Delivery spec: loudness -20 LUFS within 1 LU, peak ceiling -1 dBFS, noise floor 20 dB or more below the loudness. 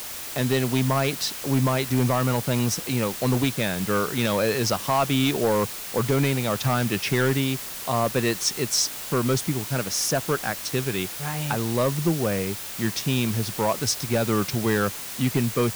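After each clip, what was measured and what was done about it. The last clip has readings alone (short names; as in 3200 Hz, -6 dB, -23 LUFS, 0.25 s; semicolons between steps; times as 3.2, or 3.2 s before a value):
clipped 0.8%; flat tops at -14.5 dBFS; noise floor -35 dBFS; noise floor target -44 dBFS; loudness -24.0 LUFS; peak -14.5 dBFS; loudness target -20.0 LUFS
-> clip repair -14.5 dBFS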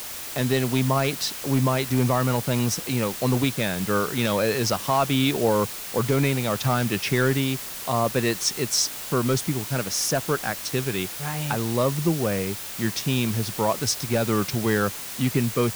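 clipped 0.0%; noise floor -35 dBFS; noise floor target -44 dBFS
-> denoiser 9 dB, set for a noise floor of -35 dBFS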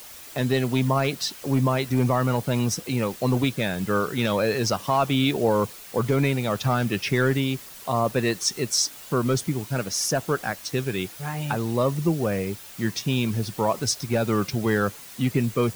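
noise floor -43 dBFS; noise floor target -45 dBFS
-> denoiser 6 dB, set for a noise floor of -43 dBFS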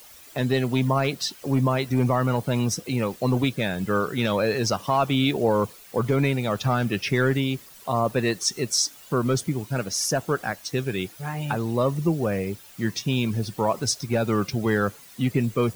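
noise floor -48 dBFS; loudness -24.5 LUFS; peak -9.0 dBFS; loudness target -20.0 LUFS
-> gain +4.5 dB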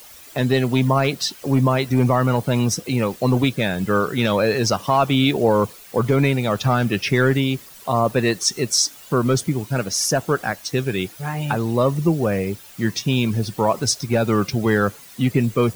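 loudness -20.0 LUFS; peak -4.5 dBFS; noise floor -43 dBFS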